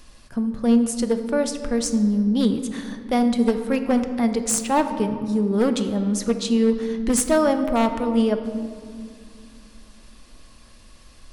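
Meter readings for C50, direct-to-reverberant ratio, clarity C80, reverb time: 9.5 dB, 7.5 dB, 10.5 dB, 2.2 s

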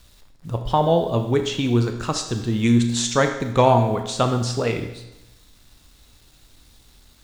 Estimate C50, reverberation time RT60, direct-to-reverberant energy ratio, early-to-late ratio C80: 8.0 dB, 1.0 s, 5.5 dB, 10.5 dB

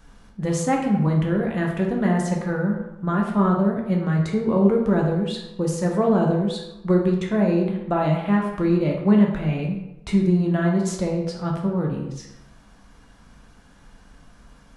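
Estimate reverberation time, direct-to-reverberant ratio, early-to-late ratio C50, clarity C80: 0.90 s, −0.5 dB, 4.5 dB, 7.0 dB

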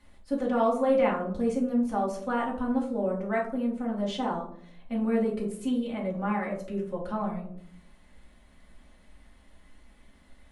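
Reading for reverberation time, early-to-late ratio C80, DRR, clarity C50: 0.65 s, 11.5 dB, −5.0 dB, 7.5 dB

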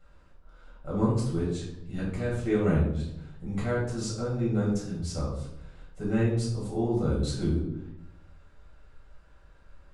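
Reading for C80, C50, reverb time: 6.5 dB, 3.0 dB, 0.80 s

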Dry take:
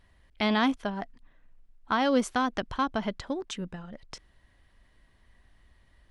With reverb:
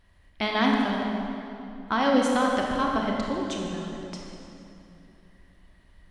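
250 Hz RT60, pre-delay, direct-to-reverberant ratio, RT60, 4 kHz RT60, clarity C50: 3.4 s, 24 ms, −1.0 dB, 2.9 s, 2.1 s, 0.0 dB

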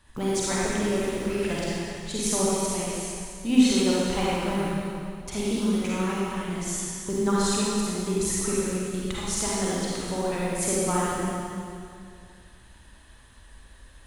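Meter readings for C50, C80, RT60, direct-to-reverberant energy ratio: −5.5 dB, −2.5 dB, 2.3 s, −7.0 dB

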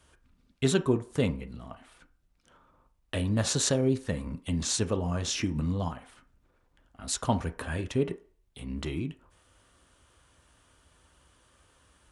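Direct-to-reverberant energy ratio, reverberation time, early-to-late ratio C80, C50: 7.0 dB, 0.45 s, 21.5 dB, 16.0 dB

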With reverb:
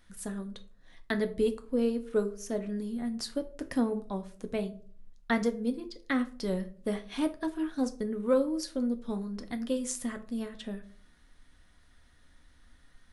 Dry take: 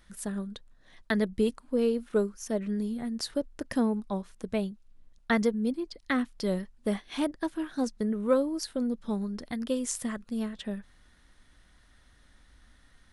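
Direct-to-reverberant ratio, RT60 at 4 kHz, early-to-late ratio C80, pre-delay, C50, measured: 7.0 dB, 0.25 s, 20.0 dB, 4 ms, 15.0 dB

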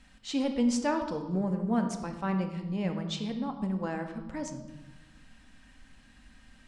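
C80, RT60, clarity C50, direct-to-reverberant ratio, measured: 10.0 dB, 1.1 s, 8.0 dB, 5.0 dB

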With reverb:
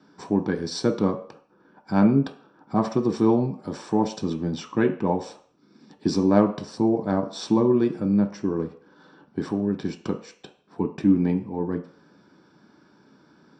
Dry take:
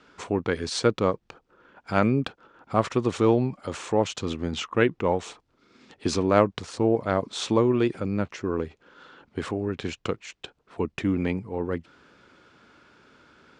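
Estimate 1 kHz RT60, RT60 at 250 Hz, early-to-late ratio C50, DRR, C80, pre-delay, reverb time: 0.50 s, 0.45 s, 11.5 dB, 4.0 dB, 15.0 dB, 3 ms, 0.50 s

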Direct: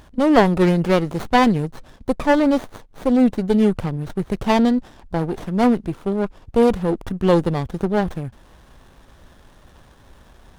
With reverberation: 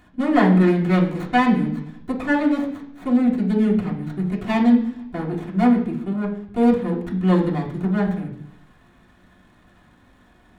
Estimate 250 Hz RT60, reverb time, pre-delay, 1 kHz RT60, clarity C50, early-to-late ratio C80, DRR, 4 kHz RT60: 0.85 s, 0.70 s, 3 ms, 0.70 s, 8.0 dB, 11.5 dB, −5.5 dB, 0.95 s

